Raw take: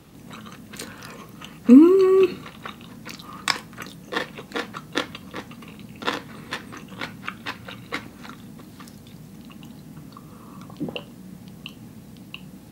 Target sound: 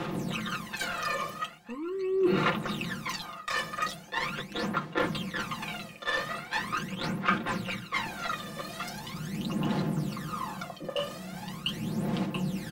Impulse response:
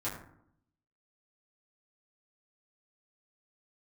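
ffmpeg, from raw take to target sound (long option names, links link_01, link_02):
-filter_complex "[0:a]aecho=1:1:5.7:0.8,areverse,acompressor=threshold=-35dB:ratio=12,areverse,asplit=2[link_01][link_02];[link_02]highpass=frequency=720:poles=1,volume=16dB,asoftclip=type=tanh:threshold=-23.5dB[link_03];[link_01][link_03]amix=inputs=2:normalize=0,lowpass=frequency=3100:poles=1,volume=-6dB,aphaser=in_gain=1:out_gain=1:delay=1.7:decay=0.73:speed=0.41:type=sinusoidal"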